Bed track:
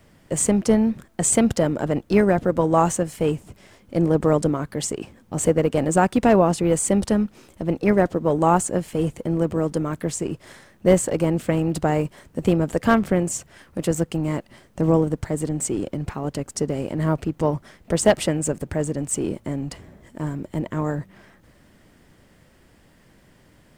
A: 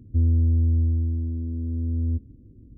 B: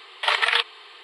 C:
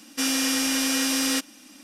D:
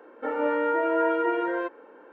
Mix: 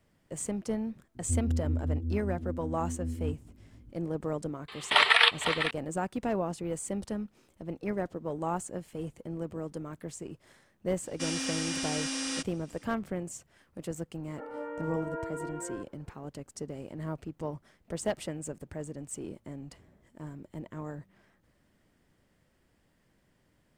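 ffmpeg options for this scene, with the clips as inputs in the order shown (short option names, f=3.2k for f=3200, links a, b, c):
-filter_complex "[0:a]volume=-15dB[a];[1:a]flanger=delay=16:depth=4.4:speed=2.6[b];[2:a]aecho=1:1:503:0.355[c];[3:a]aresample=22050,aresample=44100[d];[4:a]highshelf=f=2.7k:g=-11[e];[b]atrim=end=2.77,asetpts=PTS-STARTPTS,volume=-3.5dB,afade=t=in:d=0.004:c=hsin,afade=t=out:st=2.766:d=0.004:c=hsin,adelay=1150[f];[c]atrim=end=1.03,asetpts=PTS-STARTPTS,volume=-0.5dB,afade=t=in:d=0.004:c=hsin,afade=t=out:st=1.026:d=0.004:c=hsin,adelay=4680[g];[d]atrim=end=1.83,asetpts=PTS-STARTPTS,volume=-9.5dB,afade=t=in:d=0.004:c=hsin,afade=t=out:st=1.826:d=0.004:c=hsin,adelay=11020[h];[e]atrim=end=2.12,asetpts=PTS-STARTPTS,volume=-13dB,afade=t=in:d=0.004:c=hsin,afade=t=out:st=2.116:d=0.004:c=hsin,adelay=14150[i];[a][f][g][h][i]amix=inputs=5:normalize=0"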